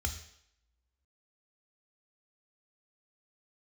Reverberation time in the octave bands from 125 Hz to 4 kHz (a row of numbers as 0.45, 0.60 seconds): 0.50, 0.60, 0.75, 0.75, 0.75, 0.70 seconds